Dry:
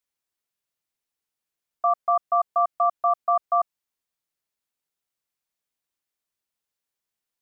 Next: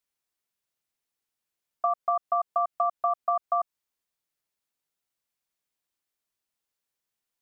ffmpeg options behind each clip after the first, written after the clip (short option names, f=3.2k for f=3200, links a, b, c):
-af "acompressor=threshold=-22dB:ratio=6"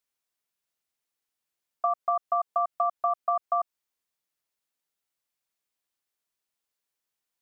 -af "lowshelf=f=250:g=-4"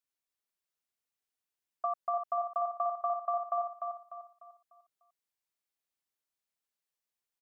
-af "aecho=1:1:298|596|894|1192|1490:0.562|0.214|0.0812|0.0309|0.0117,volume=-7dB"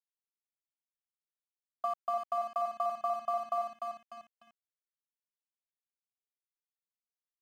-af "aeval=exprs='sgn(val(0))*max(abs(val(0))-0.00251,0)':c=same"